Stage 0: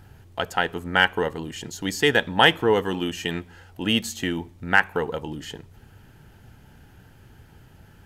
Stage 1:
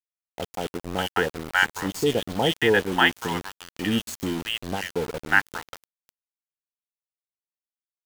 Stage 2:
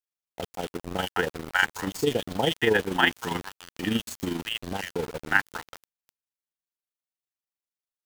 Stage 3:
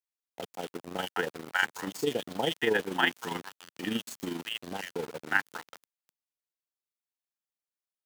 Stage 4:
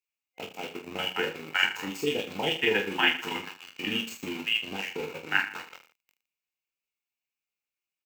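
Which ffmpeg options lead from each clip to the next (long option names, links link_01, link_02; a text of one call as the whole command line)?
ffmpeg -i in.wav -filter_complex "[0:a]acrossover=split=760|3300[link_01][link_02][link_03];[link_03]adelay=30[link_04];[link_02]adelay=590[link_05];[link_01][link_05][link_04]amix=inputs=3:normalize=0,aeval=exprs='val(0)*gte(abs(val(0)),0.0316)':channel_layout=same" out.wav
ffmpeg -i in.wav -af "tremolo=f=25:d=0.571" out.wav
ffmpeg -i in.wav -af "highpass=170,volume=-4.5dB" out.wav
ffmpeg -i in.wav -filter_complex "[0:a]superequalizer=8b=0.708:12b=3.55:16b=0.398,asplit=2[link_01][link_02];[link_02]aecho=0:1:20|45|76.25|115.3|164.1:0.631|0.398|0.251|0.158|0.1[link_03];[link_01][link_03]amix=inputs=2:normalize=0,volume=-1.5dB" out.wav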